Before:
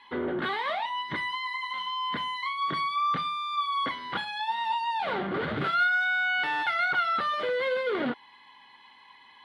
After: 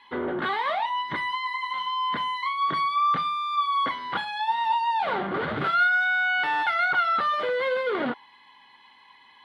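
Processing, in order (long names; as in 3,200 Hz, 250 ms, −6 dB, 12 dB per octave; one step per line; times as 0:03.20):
dynamic equaliser 950 Hz, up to +5 dB, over −42 dBFS, Q 0.89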